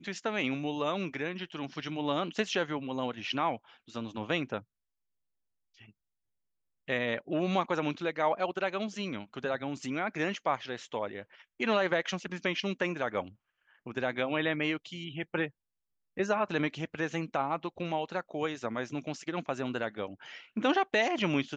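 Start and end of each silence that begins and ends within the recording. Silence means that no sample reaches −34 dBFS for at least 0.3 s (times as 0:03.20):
0:03.56–0:03.96
0:04.59–0:06.89
0:11.21–0:11.60
0:13.22–0:13.87
0:15.47–0:16.17
0:20.06–0:20.57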